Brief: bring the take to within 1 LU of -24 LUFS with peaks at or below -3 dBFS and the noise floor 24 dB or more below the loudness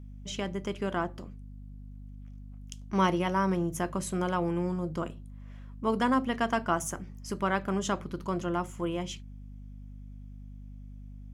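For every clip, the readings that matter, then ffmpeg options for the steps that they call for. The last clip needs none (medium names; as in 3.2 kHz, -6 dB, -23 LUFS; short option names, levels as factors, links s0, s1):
hum 50 Hz; highest harmonic 250 Hz; hum level -42 dBFS; loudness -31.0 LUFS; peak level -14.5 dBFS; loudness target -24.0 LUFS
-> -af "bandreject=f=50:t=h:w=4,bandreject=f=100:t=h:w=4,bandreject=f=150:t=h:w=4,bandreject=f=200:t=h:w=4,bandreject=f=250:t=h:w=4"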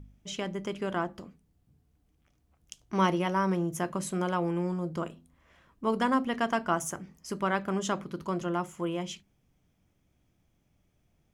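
hum not found; loudness -31.0 LUFS; peak level -14.5 dBFS; loudness target -24.0 LUFS
-> -af "volume=2.24"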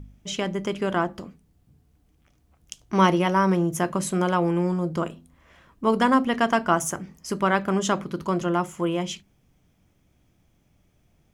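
loudness -24.0 LUFS; peak level -7.5 dBFS; noise floor -65 dBFS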